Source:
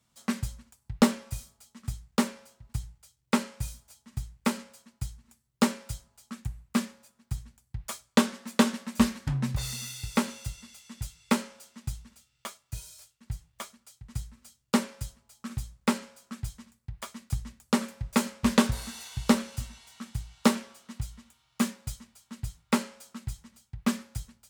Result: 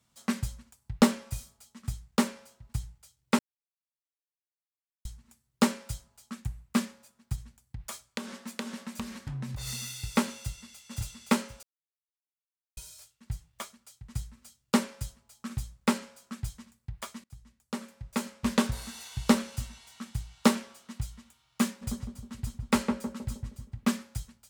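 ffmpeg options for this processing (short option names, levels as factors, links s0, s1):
-filter_complex "[0:a]asplit=3[s0][s1][s2];[s0]afade=t=out:st=7.35:d=0.02[s3];[s1]acompressor=threshold=0.0224:ratio=6:attack=3.2:release=140:knee=1:detection=peak,afade=t=in:st=7.35:d=0.02,afade=t=out:st=9.66:d=0.02[s4];[s2]afade=t=in:st=9.66:d=0.02[s5];[s3][s4][s5]amix=inputs=3:normalize=0,asplit=2[s6][s7];[s7]afade=t=in:st=10.38:d=0.01,afade=t=out:st=10.81:d=0.01,aecho=0:1:520|1040|1560:0.944061|0.188812|0.0377624[s8];[s6][s8]amix=inputs=2:normalize=0,asplit=3[s9][s10][s11];[s9]afade=t=out:st=21.81:d=0.02[s12];[s10]asplit=2[s13][s14];[s14]adelay=157,lowpass=f=870:p=1,volume=0.708,asplit=2[s15][s16];[s16]adelay=157,lowpass=f=870:p=1,volume=0.5,asplit=2[s17][s18];[s18]adelay=157,lowpass=f=870:p=1,volume=0.5,asplit=2[s19][s20];[s20]adelay=157,lowpass=f=870:p=1,volume=0.5,asplit=2[s21][s22];[s22]adelay=157,lowpass=f=870:p=1,volume=0.5,asplit=2[s23][s24];[s24]adelay=157,lowpass=f=870:p=1,volume=0.5,asplit=2[s25][s26];[s26]adelay=157,lowpass=f=870:p=1,volume=0.5[s27];[s13][s15][s17][s19][s21][s23][s25][s27]amix=inputs=8:normalize=0,afade=t=in:st=21.81:d=0.02,afade=t=out:st=23.84:d=0.02[s28];[s11]afade=t=in:st=23.84:d=0.02[s29];[s12][s28][s29]amix=inputs=3:normalize=0,asplit=6[s30][s31][s32][s33][s34][s35];[s30]atrim=end=3.39,asetpts=PTS-STARTPTS,afade=t=out:st=3.386:d=0.004:c=hsin[s36];[s31]atrim=start=3.39:end=5.05,asetpts=PTS-STARTPTS,volume=0[s37];[s32]atrim=start=5.05:end=11.63,asetpts=PTS-STARTPTS,afade=t=in:d=0.004:c=hsin,afade=t=out:st=6.576:d=0.004:c=hsin[s38];[s33]atrim=start=11.63:end=12.77,asetpts=PTS-STARTPTS,volume=0[s39];[s34]atrim=start=12.77:end=17.24,asetpts=PTS-STARTPTS,afade=t=in:d=0.004:c=hsin,afade=t=out:st=4.466:d=0.004:c=hsin:silence=0.0749894[s40];[s35]atrim=start=17.24,asetpts=PTS-STARTPTS,afade=t=in:d=2.14:silence=0.0749894[s41];[s36][s37][s38][s39][s40][s41]concat=n=6:v=0:a=1"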